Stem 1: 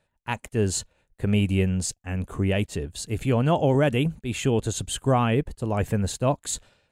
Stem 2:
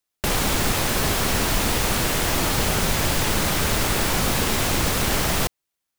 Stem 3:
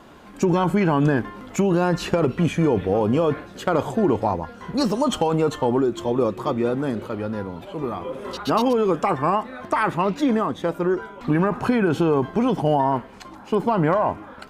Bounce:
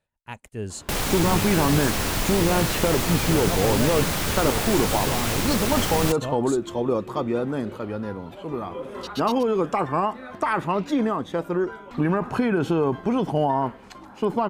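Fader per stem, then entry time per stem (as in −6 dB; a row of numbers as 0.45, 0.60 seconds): −8.5, −3.5, −2.5 decibels; 0.00, 0.65, 0.70 seconds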